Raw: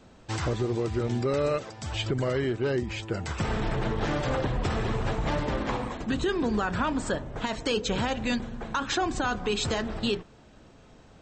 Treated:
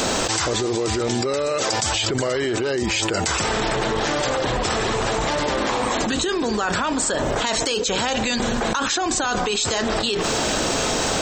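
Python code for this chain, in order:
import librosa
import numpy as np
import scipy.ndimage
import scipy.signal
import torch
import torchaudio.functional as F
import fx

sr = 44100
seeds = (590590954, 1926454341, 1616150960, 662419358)

y = fx.bass_treble(x, sr, bass_db=-12, treble_db=11)
y = fx.env_flatten(y, sr, amount_pct=100)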